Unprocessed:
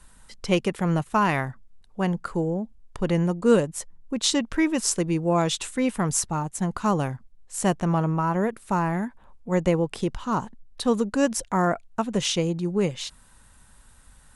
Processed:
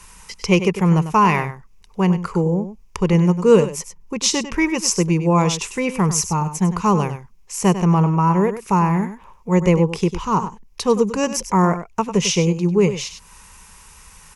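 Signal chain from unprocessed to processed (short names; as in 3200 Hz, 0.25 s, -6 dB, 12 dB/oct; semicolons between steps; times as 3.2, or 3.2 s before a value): ripple EQ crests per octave 0.79, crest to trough 10 dB; echo 98 ms -11.5 dB; mismatched tape noise reduction encoder only; gain +4 dB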